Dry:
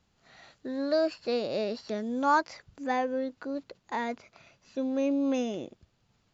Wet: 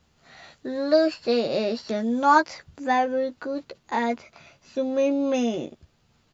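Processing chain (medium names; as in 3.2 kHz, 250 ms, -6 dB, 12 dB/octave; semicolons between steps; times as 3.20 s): doubling 13 ms -5.5 dB; trim +5.5 dB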